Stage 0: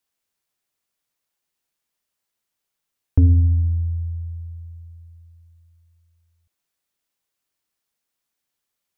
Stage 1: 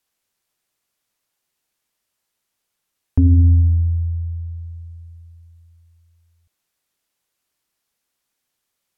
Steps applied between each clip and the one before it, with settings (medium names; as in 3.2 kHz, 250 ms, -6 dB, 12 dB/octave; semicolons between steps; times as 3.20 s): low-pass that closes with the level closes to 360 Hz, closed at -19 dBFS; dynamic bell 280 Hz, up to +7 dB, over -35 dBFS, Q 1.2; loudness maximiser +11 dB; trim -6 dB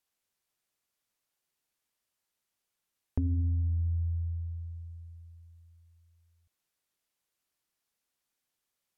compression, threshold -19 dBFS, peak gain reduction 9 dB; trim -8 dB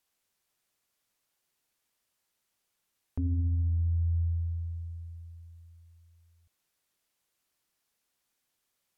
peak limiter -28.5 dBFS, peak gain reduction 10.5 dB; trim +4.5 dB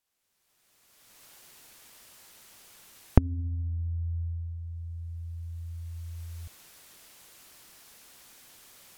recorder AGC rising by 24 dB/s; in parallel at -3.5 dB: short-mantissa float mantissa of 8-bit; on the sum: trim -8.5 dB